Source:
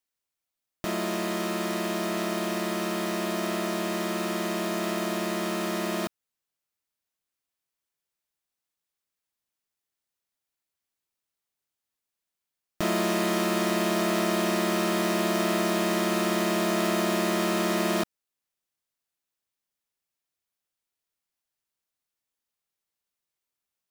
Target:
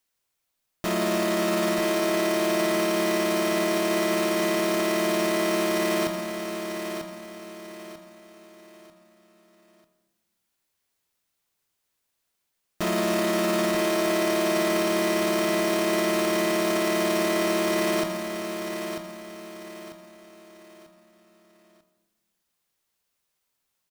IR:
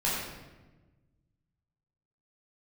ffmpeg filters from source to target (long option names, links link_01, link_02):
-filter_complex "[0:a]alimiter=level_in=1.5dB:limit=-24dB:level=0:latency=1:release=27,volume=-1.5dB,aecho=1:1:943|1886|2829|3772:0.422|0.148|0.0517|0.0181,asplit=2[link_01][link_02];[1:a]atrim=start_sample=2205[link_03];[link_02][link_03]afir=irnorm=-1:irlink=0,volume=-18dB[link_04];[link_01][link_04]amix=inputs=2:normalize=0,volume=7dB"